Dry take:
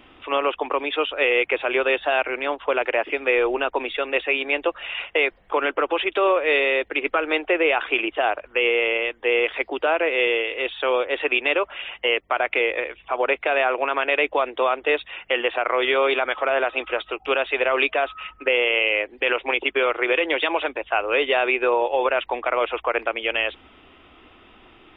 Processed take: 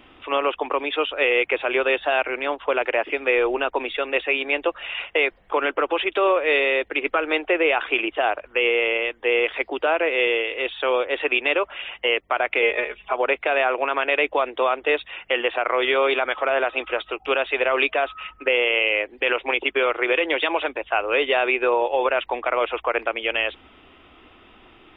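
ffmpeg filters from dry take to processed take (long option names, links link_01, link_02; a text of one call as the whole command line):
ffmpeg -i in.wav -filter_complex "[0:a]asettb=1/sr,asplit=3[link_01][link_02][link_03];[link_01]atrim=end=12.624[link_04];[link_02]atrim=start=12.62:end=13.13,asetpts=PTS-STARTPTS,afade=type=in:duration=0.004:curve=qsin,afade=type=out:start_time=0.506:duration=0.004:curve=qsin,aecho=1:1:4.8:0.87,atrim=end_sample=22491[link_05];[link_03]atrim=start=13.126[link_06];[link_04][link_05]acrossfade=duration=0.004:curve1=hsin:curve2=qsin[link_07];[link_07][link_06]acrossfade=duration=0.004:curve1=qsin:curve2=hsin" out.wav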